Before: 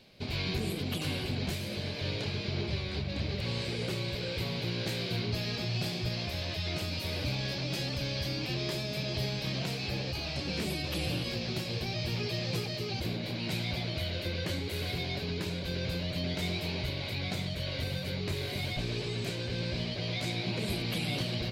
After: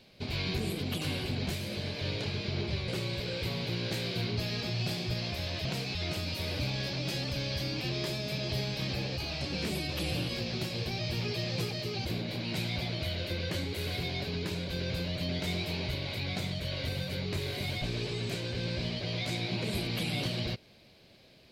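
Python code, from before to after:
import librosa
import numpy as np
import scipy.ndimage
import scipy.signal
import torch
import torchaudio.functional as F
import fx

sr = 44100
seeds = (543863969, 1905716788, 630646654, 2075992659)

y = fx.edit(x, sr, fx.cut(start_s=2.88, length_s=0.95),
    fx.move(start_s=9.58, length_s=0.3, to_s=6.6), tone=tone)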